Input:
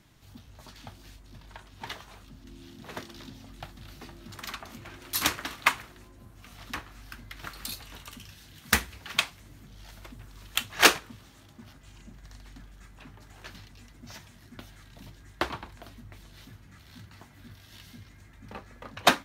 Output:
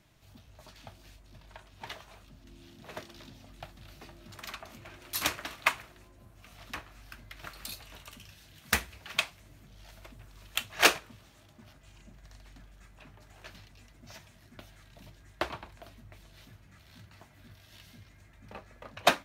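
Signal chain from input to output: graphic EQ with 31 bands 250 Hz -4 dB, 630 Hz +6 dB, 2.5 kHz +3 dB; trim -4.5 dB

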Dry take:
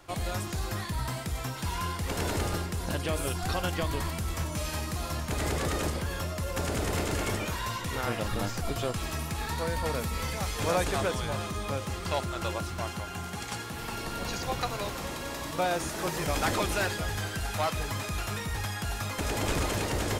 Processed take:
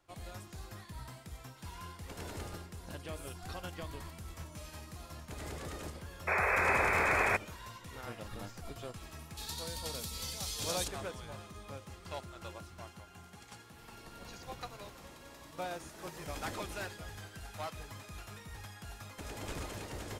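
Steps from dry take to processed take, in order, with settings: 6.27–7.37 s: painted sound noise 360–2600 Hz -21 dBFS; 9.37–10.88 s: resonant high shelf 2.8 kHz +10.5 dB, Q 1.5; upward expansion 1.5:1, over -39 dBFS; trim -8 dB

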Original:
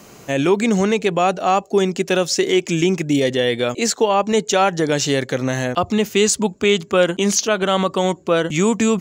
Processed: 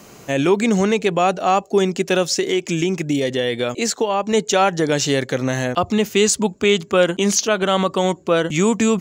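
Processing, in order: 2.33–4.33 s: compression 2.5:1, threshold -17 dBFS, peak gain reduction 4.5 dB

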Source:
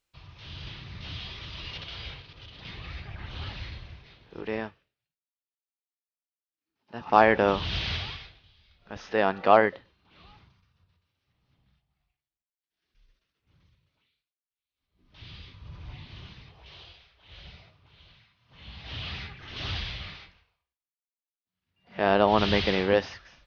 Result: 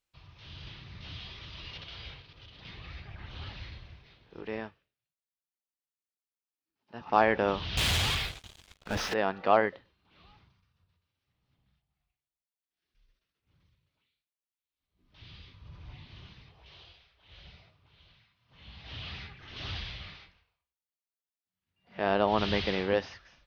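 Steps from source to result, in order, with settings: 7.77–9.14 s: waveshaping leveller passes 5; trim -5 dB

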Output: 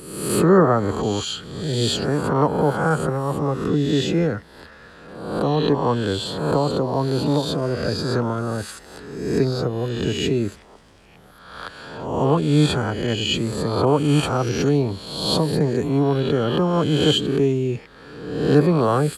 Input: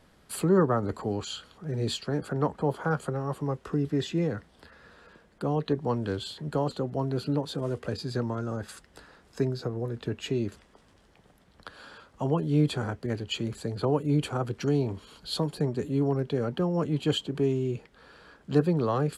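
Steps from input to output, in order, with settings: reverse spectral sustain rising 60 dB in 0.96 s; trim +6.5 dB

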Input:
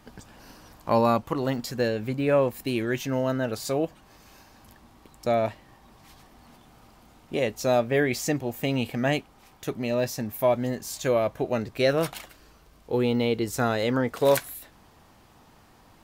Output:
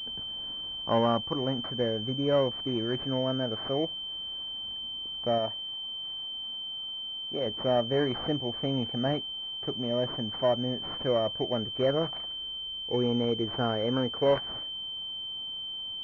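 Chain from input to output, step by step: 5.38–7.46 s: bass shelf 380 Hz -6 dB; class-D stage that switches slowly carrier 3.1 kHz; trim -3.5 dB

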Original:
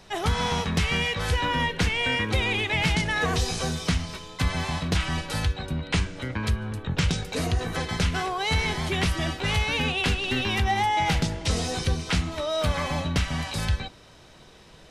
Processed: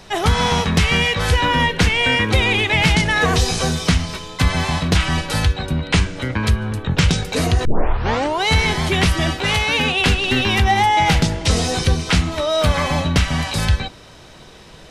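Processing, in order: 7.65 s: tape start 0.78 s; 9.41–10.00 s: bass shelf 130 Hz -9 dB; trim +8.5 dB

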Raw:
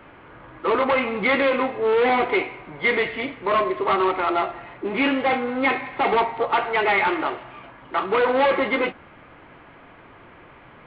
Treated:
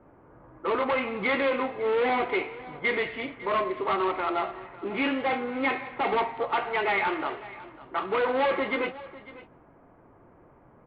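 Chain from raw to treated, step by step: level-controlled noise filter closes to 680 Hz, open at -20.5 dBFS; delay 550 ms -18 dB; trim -6 dB

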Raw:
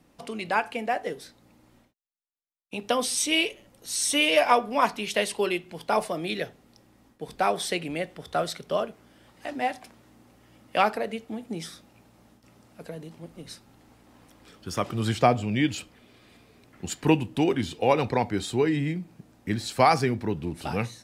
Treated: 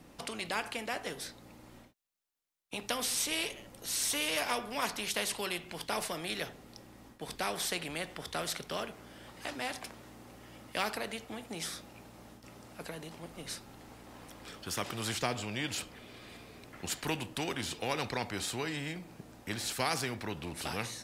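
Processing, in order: spectrum-flattening compressor 2:1; trim -8.5 dB

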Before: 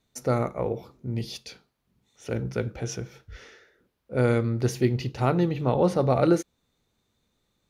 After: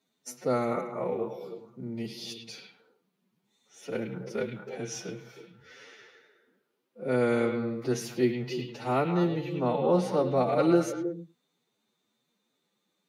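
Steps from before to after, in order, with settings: high-pass 160 Hz 24 dB/octave; time stretch by phase-locked vocoder 1.7×; repeats whose band climbs or falls 105 ms, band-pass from 2.8 kHz, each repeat -1.4 oct, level -3 dB; trim -2.5 dB

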